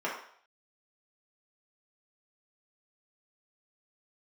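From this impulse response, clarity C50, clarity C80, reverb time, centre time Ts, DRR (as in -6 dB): 4.0 dB, 8.0 dB, 0.60 s, 38 ms, -6.0 dB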